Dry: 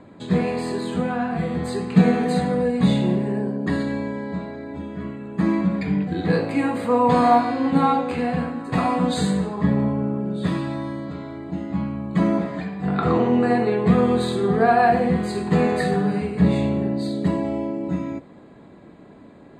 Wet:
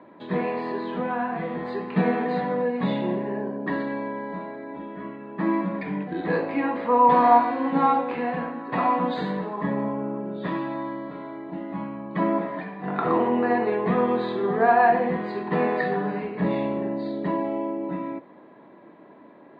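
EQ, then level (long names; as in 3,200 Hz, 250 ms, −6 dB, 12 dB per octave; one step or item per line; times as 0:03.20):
loudspeaker in its box 220–3,500 Hz, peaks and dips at 330 Hz +4 dB, 600 Hz +5 dB, 970 Hz +9 dB, 1,800 Hz +5 dB
−4.5 dB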